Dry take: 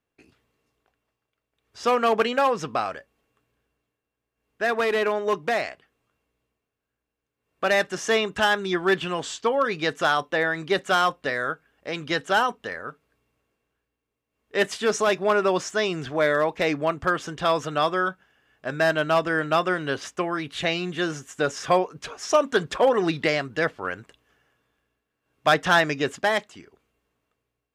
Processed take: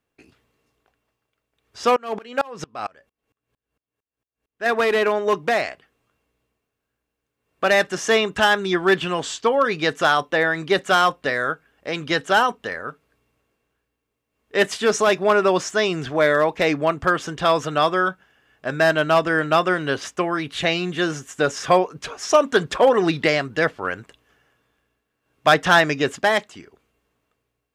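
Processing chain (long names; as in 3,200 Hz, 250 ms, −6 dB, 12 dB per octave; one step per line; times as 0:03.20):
0:01.96–0:04.66: tremolo with a ramp in dB swelling 4.4 Hz, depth 30 dB
level +4 dB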